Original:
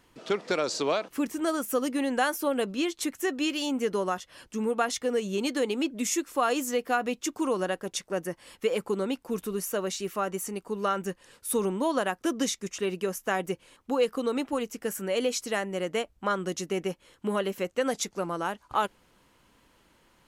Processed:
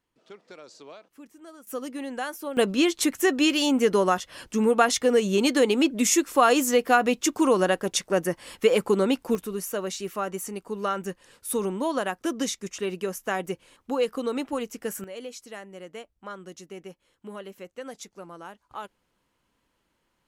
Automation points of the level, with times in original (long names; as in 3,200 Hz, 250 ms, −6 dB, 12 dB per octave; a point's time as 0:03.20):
−18.5 dB
from 0:01.67 −6 dB
from 0:02.57 +7 dB
from 0:09.35 0 dB
from 0:15.04 −11 dB